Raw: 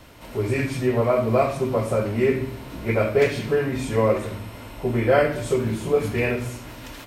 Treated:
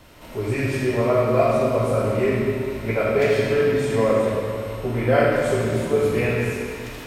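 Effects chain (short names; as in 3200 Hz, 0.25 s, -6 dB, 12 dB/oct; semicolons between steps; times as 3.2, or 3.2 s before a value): crackle 51/s -48 dBFS; digital reverb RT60 2.3 s, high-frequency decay 0.9×, pre-delay 5 ms, DRR -1.5 dB; gain -2 dB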